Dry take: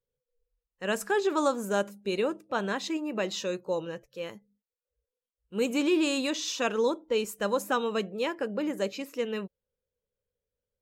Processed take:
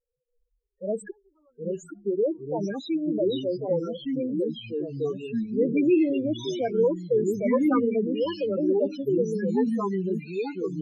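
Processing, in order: 1.1–2.04 flipped gate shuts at -25 dBFS, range -41 dB; on a send: thin delay 0.849 s, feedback 71%, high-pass 5100 Hz, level -12 dB; on the sum: loudest bins only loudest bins 4; echoes that change speed 0.617 s, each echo -3 st, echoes 3; gain +5 dB

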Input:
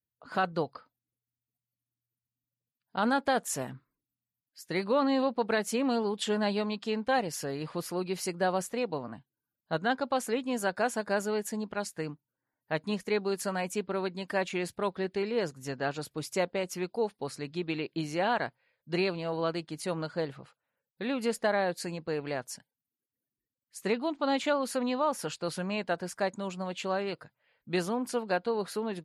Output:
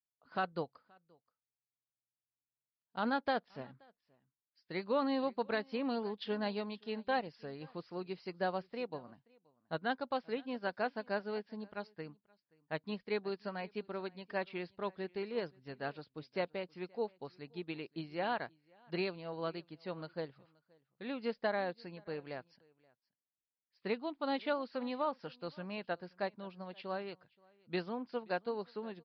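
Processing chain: downsampling 11025 Hz; echo 0.527 s -20 dB; upward expander 1.5:1, over -45 dBFS; gain -5.5 dB

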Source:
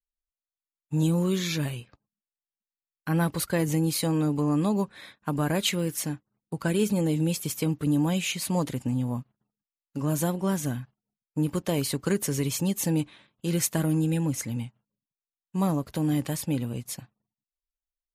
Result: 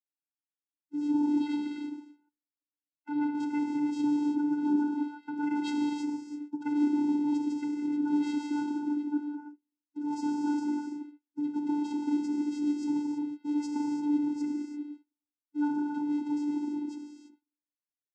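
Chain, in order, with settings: bin magnitudes rounded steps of 30 dB; 5.42–6.65 comb 2.4 ms, depth 65%; 10.12–10.59 high shelf 2800 Hz +9 dB; non-linear reverb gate 0.36 s flat, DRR 0.5 dB; vocoder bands 8, square 294 Hz; gain -4.5 dB

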